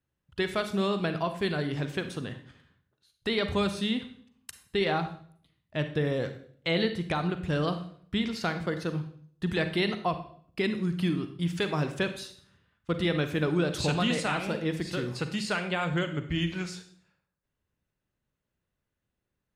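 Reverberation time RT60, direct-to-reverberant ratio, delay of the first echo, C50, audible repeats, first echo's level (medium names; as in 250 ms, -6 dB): 0.55 s, 8.5 dB, no echo, 10.0 dB, no echo, no echo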